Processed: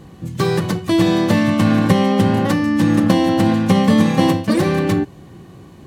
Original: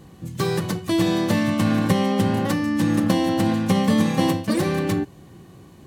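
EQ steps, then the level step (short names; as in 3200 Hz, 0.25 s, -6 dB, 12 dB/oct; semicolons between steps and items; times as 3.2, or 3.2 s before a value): high shelf 6000 Hz -6.5 dB; +5.5 dB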